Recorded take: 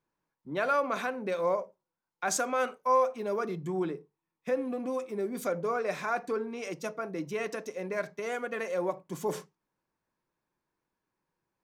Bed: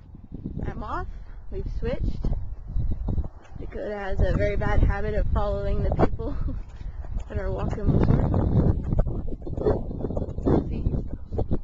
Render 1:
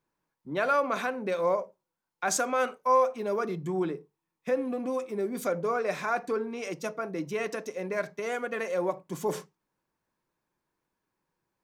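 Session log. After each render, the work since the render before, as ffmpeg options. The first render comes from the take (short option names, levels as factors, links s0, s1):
-af "volume=1.26"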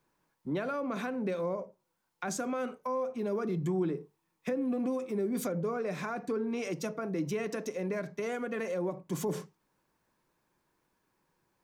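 -filter_complex "[0:a]acrossover=split=330[s0][s1];[s1]acompressor=threshold=0.00891:ratio=5[s2];[s0][s2]amix=inputs=2:normalize=0,asplit=2[s3][s4];[s4]alimiter=level_in=3.98:limit=0.0631:level=0:latency=1,volume=0.251,volume=1.06[s5];[s3][s5]amix=inputs=2:normalize=0"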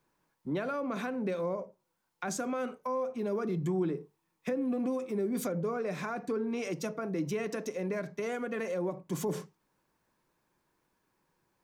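-af anull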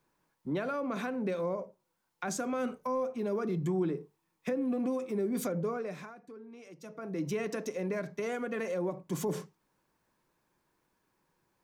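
-filter_complex "[0:a]asettb=1/sr,asplit=3[s0][s1][s2];[s0]atrim=end=2.534[s3];[s1]atrim=start=2.53:end=3.07,asetpts=PTS-STARTPTS,afade=t=in:d=0.004:c=qsin,afade=t=out:st=0.536:d=0.004:c=qsin,bass=f=250:g=8,treble=f=4000:g=3[s4];[s2]atrim=start=3.066[s5];[s3][s4]acrossfade=d=0.004:c1=hsin:c2=qsin[s6];[s6][s5]acrossfade=d=0.004:c1=qsin:c2=hsin,asplit=3[s7][s8][s9];[s7]atrim=end=6.16,asetpts=PTS-STARTPTS,afade=t=out:st=5.66:d=0.5:silence=0.158489[s10];[s8]atrim=start=6.16:end=6.8,asetpts=PTS-STARTPTS,volume=0.158[s11];[s9]atrim=start=6.8,asetpts=PTS-STARTPTS,afade=t=in:d=0.5:silence=0.158489[s12];[s10][s11][s12]concat=n=3:v=0:a=1"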